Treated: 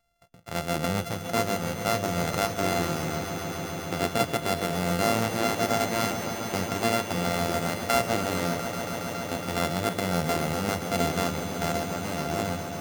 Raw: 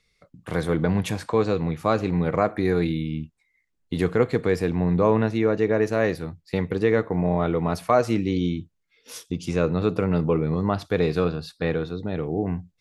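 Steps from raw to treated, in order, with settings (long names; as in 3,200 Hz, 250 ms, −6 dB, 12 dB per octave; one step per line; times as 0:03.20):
samples sorted by size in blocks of 64 samples
echo that builds up and dies away 139 ms, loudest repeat 5, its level −12 dB
level −5.5 dB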